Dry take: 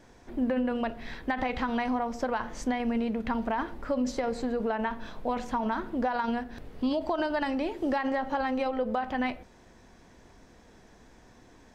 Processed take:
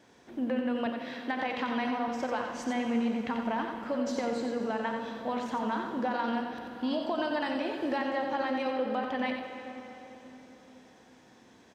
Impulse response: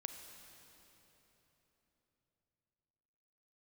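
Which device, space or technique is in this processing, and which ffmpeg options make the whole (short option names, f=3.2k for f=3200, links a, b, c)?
PA in a hall: -filter_complex "[0:a]highpass=140,equalizer=f=3.2k:t=o:w=0.84:g=4.5,aecho=1:1:90:0.501[a];[1:a]atrim=start_sample=2205[b];[a][b]afir=irnorm=-1:irlink=0,asettb=1/sr,asplit=3[c][d][e];[c]atrim=end=0.864[f];[d]atrim=start=0.86:end=2.08,asetpts=PTS-STARTPTS,afade=t=in:d=0.004:c=qsin,afade=t=out:st=1.216:d=0.004:c=qsin,highpass=130[g];[e]atrim=start=2.076[h];[f][g]acrossfade=d=0.004:c1=hsin:c2=qsin[i];[i][h]acrossfade=d=0.004:c1=qsin:c2=hsin"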